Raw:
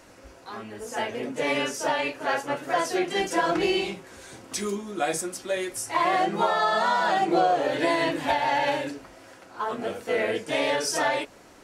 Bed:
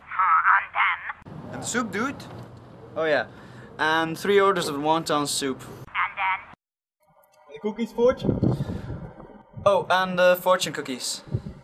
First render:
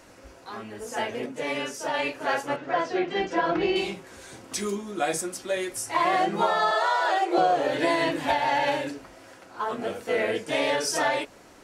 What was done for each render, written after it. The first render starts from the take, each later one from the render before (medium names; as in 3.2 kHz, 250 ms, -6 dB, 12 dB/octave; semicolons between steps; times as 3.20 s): 1.26–1.94 s: gain -4 dB; 2.56–3.76 s: distance through air 190 m; 6.71–7.38 s: Chebyshev high-pass 340 Hz, order 8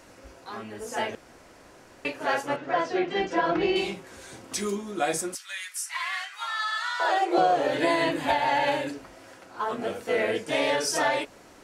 1.15–2.05 s: room tone; 5.35–7.00 s: high-pass 1.4 kHz 24 dB/octave; 7.79–8.93 s: band-stop 5.6 kHz, Q 7.6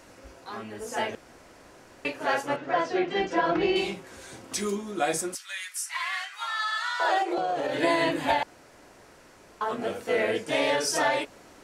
7.22–7.83 s: compression, threshold -24 dBFS; 8.43–9.61 s: room tone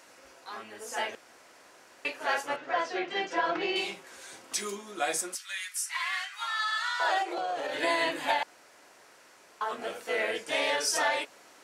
high-pass 900 Hz 6 dB/octave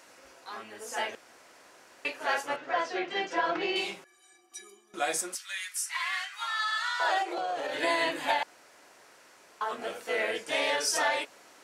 4.04–4.94 s: inharmonic resonator 350 Hz, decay 0.22 s, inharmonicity 0.03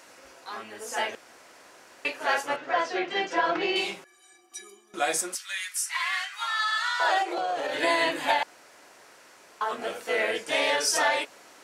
trim +3.5 dB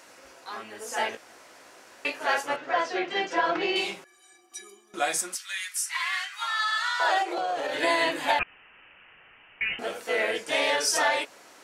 0.98–2.19 s: doubling 18 ms -6.5 dB; 5.08–6.42 s: peaking EQ 470 Hz -6.5 dB 1.3 oct; 8.39–9.79 s: frequency inversion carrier 3.3 kHz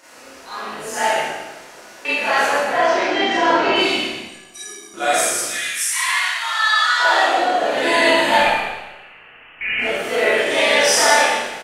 frequency-shifting echo 122 ms, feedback 33%, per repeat -64 Hz, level -7 dB; Schroeder reverb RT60 0.98 s, combs from 26 ms, DRR -9 dB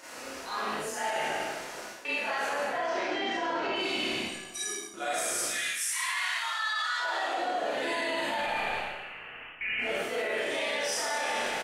peak limiter -10 dBFS, peak gain reduction 8 dB; reverse; compression 6:1, threshold -29 dBFS, peak gain reduction 13 dB; reverse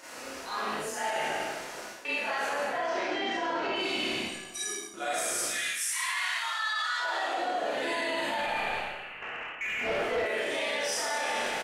9.22–10.26 s: overdrive pedal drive 20 dB, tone 1 kHz, clips at -19 dBFS